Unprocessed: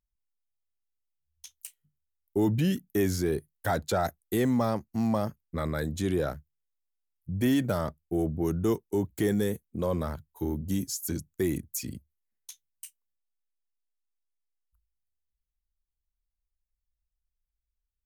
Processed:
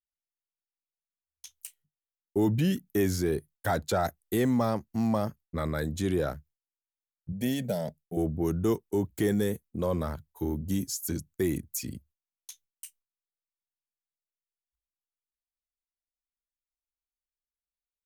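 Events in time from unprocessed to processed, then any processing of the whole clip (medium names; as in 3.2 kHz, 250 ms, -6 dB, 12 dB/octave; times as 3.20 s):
7.32–8.17 s: static phaser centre 320 Hz, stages 6
whole clip: gate with hold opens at -57 dBFS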